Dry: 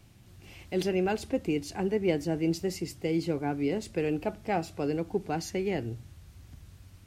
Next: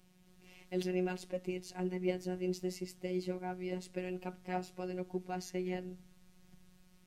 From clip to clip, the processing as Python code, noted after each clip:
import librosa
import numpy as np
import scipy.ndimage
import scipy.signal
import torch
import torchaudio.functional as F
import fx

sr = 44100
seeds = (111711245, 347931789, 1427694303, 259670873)

y = fx.robotise(x, sr, hz=182.0)
y = y * 10.0 ** (-6.0 / 20.0)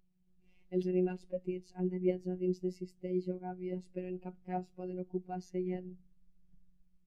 y = fx.low_shelf(x, sr, hz=95.0, db=8.5)
y = fx.spectral_expand(y, sr, expansion=1.5)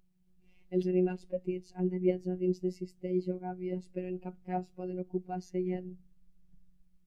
y = fx.end_taper(x, sr, db_per_s=570.0)
y = y * 10.0 ** (3.0 / 20.0)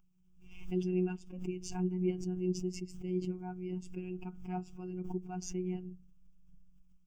y = fx.fixed_phaser(x, sr, hz=2800.0, stages=8)
y = fx.pre_swell(y, sr, db_per_s=72.0)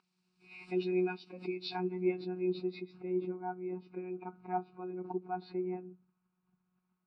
y = fx.freq_compress(x, sr, knee_hz=2100.0, ratio=1.5)
y = fx.filter_sweep_lowpass(y, sr, from_hz=5500.0, to_hz=1300.0, start_s=1.01, end_s=3.29, q=1.0)
y = fx.bandpass_edges(y, sr, low_hz=440.0, high_hz=7800.0)
y = y * 10.0 ** (8.0 / 20.0)